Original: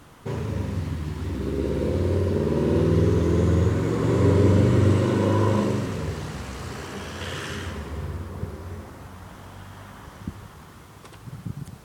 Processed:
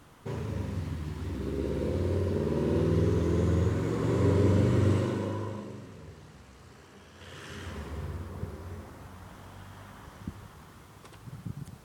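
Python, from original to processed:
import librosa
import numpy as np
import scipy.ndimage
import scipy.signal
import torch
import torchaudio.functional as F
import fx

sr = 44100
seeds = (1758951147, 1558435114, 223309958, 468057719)

y = fx.gain(x, sr, db=fx.line((4.97, -6.0), (5.63, -18.0), (7.11, -18.0), (7.8, -5.5)))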